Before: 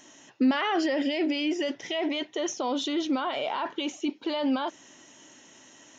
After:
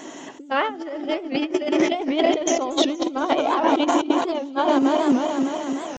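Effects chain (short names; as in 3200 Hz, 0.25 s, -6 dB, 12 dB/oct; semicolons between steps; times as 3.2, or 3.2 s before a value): regenerating reverse delay 0.151 s, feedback 80%, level -10 dB; HPF 230 Hz 12 dB/oct; tilt shelf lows +7 dB, about 1400 Hz; negative-ratio compressor -29 dBFS, ratio -0.5; vibrato 11 Hz 32 cents; thin delay 0.235 s, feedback 78%, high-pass 4400 Hz, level -20 dB; pitch shift +0.5 st; record warp 78 rpm, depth 160 cents; gain +8.5 dB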